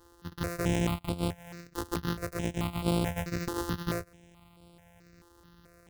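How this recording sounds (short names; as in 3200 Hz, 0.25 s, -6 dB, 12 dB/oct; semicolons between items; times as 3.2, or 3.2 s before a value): a buzz of ramps at a fixed pitch in blocks of 256 samples; notches that jump at a steady rate 4.6 Hz 630–6200 Hz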